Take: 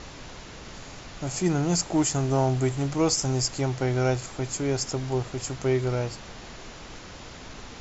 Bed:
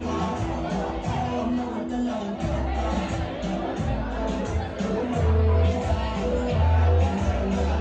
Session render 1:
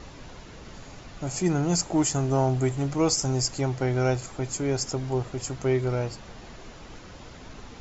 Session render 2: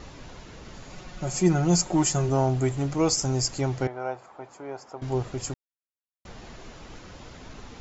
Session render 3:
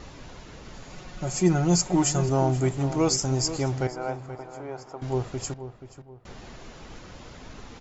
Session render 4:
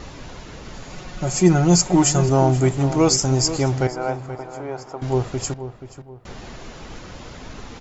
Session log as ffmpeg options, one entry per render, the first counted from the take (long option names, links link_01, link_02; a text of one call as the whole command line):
ffmpeg -i in.wav -af "afftdn=noise_reduction=6:noise_floor=-43" out.wav
ffmpeg -i in.wav -filter_complex "[0:a]asettb=1/sr,asplit=3[link_01][link_02][link_03];[link_01]atrim=end=0.904[link_04];[link_02]atrim=start=0.9:end=2.29,asetpts=PTS-STARTPTS,afade=type=in:duration=0.004:curve=qsin,afade=type=out:start_time=1.386:duration=0.004:curve=qsin,aecho=1:1:5.5:0.65,atrim=end_sample=61299[link_05];[link_03]atrim=start=2.286[link_06];[link_04][link_05]acrossfade=duration=0.004:curve1=hsin:curve2=qsin[link_07];[link_07][link_06]acrossfade=duration=0.004:curve1=qsin:curve2=hsin,asettb=1/sr,asplit=3[link_08][link_09][link_10];[link_08]atrim=end=3.874[link_11];[link_09]atrim=start=3.87:end=5.02,asetpts=PTS-STARTPTS,afade=type=in:duration=0.004:curve=qsin,afade=type=out:start_time=1.146:duration=0.004:curve=qsin,bandpass=frequency=880:width_type=q:width=1.7[link_12];[link_10]atrim=start=5.016[link_13];[link_11][link_12]acrossfade=duration=0.004:curve1=hsin:curve2=qsin[link_14];[link_14][link_13]acrossfade=duration=0.004:curve1=qsin:curve2=hsin,asplit=3[link_15][link_16][link_17];[link_15]atrim=end=5.54,asetpts=PTS-STARTPTS,afade=type=out:start_time=5.536:duration=0.004:curve=hsin[link_18];[link_16]atrim=start=5.54:end=6.25,asetpts=PTS-STARTPTS,volume=0[link_19];[link_17]atrim=start=6.25,asetpts=PTS-STARTPTS,afade=type=in:duration=0.004:curve=hsin[link_20];[link_18][link_19][link_20]concat=n=3:v=0:a=1" out.wav
ffmpeg -i in.wav -filter_complex "[0:a]asplit=2[link_01][link_02];[link_02]adelay=480,lowpass=frequency=2300:poles=1,volume=-11.5dB,asplit=2[link_03][link_04];[link_04]adelay=480,lowpass=frequency=2300:poles=1,volume=0.36,asplit=2[link_05][link_06];[link_06]adelay=480,lowpass=frequency=2300:poles=1,volume=0.36,asplit=2[link_07][link_08];[link_08]adelay=480,lowpass=frequency=2300:poles=1,volume=0.36[link_09];[link_01][link_03][link_05][link_07][link_09]amix=inputs=5:normalize=0" out.wav
ffmpeg -i in.wav -af "volume=6.5dB" out.wav